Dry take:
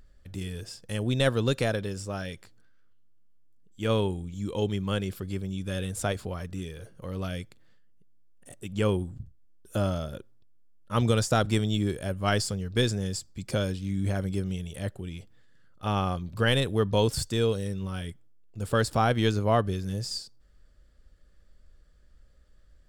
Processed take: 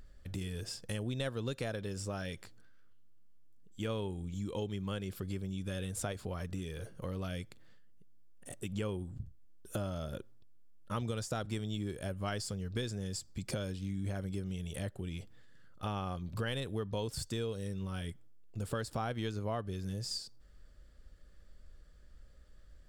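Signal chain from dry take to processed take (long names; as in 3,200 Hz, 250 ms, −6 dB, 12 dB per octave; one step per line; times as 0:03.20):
downward compressor 4 to 1, threshold −37 dBFS, peak gain reduction 15.5 dB
level +1 dB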